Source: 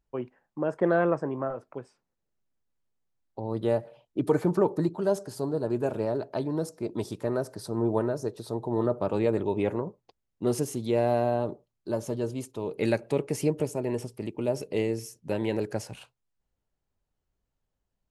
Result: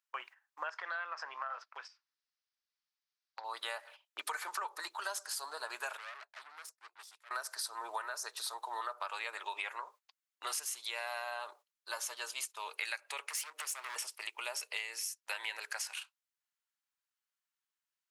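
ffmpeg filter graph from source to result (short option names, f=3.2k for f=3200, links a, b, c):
-filter_complex "[0:a]asettb=1/sr,asplit=3[a][b][c];[a]atrim=end=0.694[d];[b]atrim=start=0.69:end=3.44,asetpts=PTS-STARTPTS,afade=t=in:d=0.004:c=qsin,afade=t=out:st=2.746:d=0.004:c=qsin,highshelf=f=7.1k:t=q:w=3:g=-13,acompressor=threshold=-32dB:ratio=4:attack=3.2:release=140:knee=1:detection=peak[e];[c]atrim=start=3.436[f];[d][e]acrossfade=d=0.004:c1=hsin:c2=qsin[g];[g][f]acrossfade=d=0.004:c1=qsin:c2=hsin,asettb=1/sr,asplit=3[h][i][j];[h]atrim=end=5.974[k];[i]atrim=start=5.97:end=7.31,asetpts=PTS-STARTPTS,afade=t=in:d=0.004:c=qsin,afade=t=out:st=1.336:d=0.004:c=qsin,acompressor=threshold=-34dB:ratio=4:attack=3.2:release=140:knee=1:detection=peak,agate=range=-33dB:threshold=-41dB:ratio=3:release=100:detection=peak,aeval=exprs='(tanh(126*val(0)+0.3)-tanh(0.3))/126':c=same[l];[j]atrim=start=7.306[m];[k][l]acrossfade=d=0.004:c1=hsin:c2=qsin[n];[n][m]acrossfade=d=0.004:c1=qsin:c2=hsin,asettb=1/sr,asplit=3[o][p][q];[o]atrim=end=13.264[r];[p]atrim=start=13.26:end=13.96,asetpts=PTS-STARTPTS,afade=t=in:d=0.004:c=qsin,afade=t=out:st=0.696:d=0.004:c=qsin,highpass=f=180:w=0.5412,highpass=f=180:w=1.3066,acompressor=threshold=-31dB:ratio=8:attack=3.2:release=140:knee=1:detection=peak,asoftclip=type=hard:threshold=-36dB[s];[q]atrim=start=13.956[t];[r][s]acrossfade=d=0.004:c1=hsin:c2=qsin[u];[u][t]acrossfade=d=0.004:c1=qsin:c2=hsin,agate=range=-13dB:threshold=-44dB:ratio=16:detection=peak,highpass=f=1.2k:w=0.5412,highpass=f=1.2k:w=1.3066,acompressor=threshold=-48dB:ratio=6,volume=12dB"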